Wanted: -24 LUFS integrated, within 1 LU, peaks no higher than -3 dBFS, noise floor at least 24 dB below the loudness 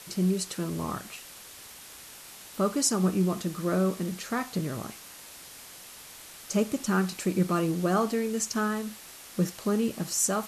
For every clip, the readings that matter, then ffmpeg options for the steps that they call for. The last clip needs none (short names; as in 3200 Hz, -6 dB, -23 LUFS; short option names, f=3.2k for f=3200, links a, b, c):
noise floor -47 dBFS; noise floor target -53 dBFS; loudness -28.5 LUFS; peak -12.5 dBFS; loudness target -24.0 LUFS
-> -af "afftdn=nr=6:nf=-47"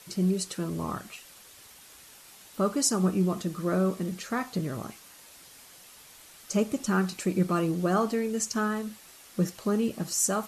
noise floor -52 dBFS; noise floor target -53 dBFS
-> -af "afftdn=nr=6:nf=-52"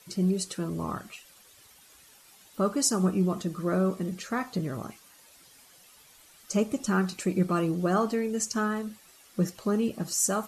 noise floor -56 dBFS; loudness -28.5 LUFS; peak -12.5 dBFS; loudness target -24.0 LUFS
-> -af "volume=4.5dB"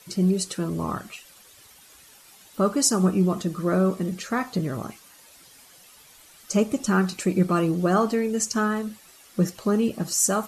loudness -24.0 LUFS; peak -8.0 dBFS; noise floor -52 dBFS